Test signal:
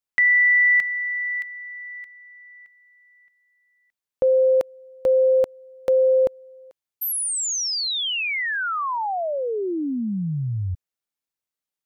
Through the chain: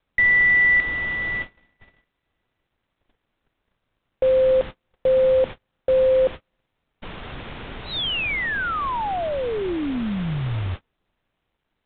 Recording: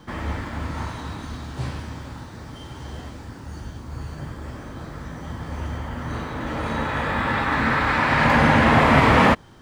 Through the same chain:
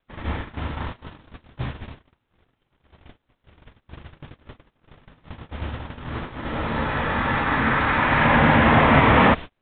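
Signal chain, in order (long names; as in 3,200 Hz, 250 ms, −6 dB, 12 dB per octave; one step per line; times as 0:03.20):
background noise pink −34 dBFS
noise gate −27 dBFS, range −38 dB
G.726 40 kbit/s 8,000 Hz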